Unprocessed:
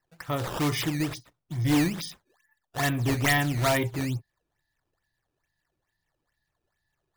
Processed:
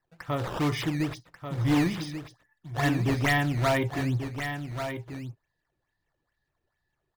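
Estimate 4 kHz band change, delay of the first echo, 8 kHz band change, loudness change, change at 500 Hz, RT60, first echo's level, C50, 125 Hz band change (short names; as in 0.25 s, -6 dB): -3.0 dB, 1.138 s, -7.5 dB, -1.5 dB, +0.5 dB, none, -8.5 dB, none, +0.5 dB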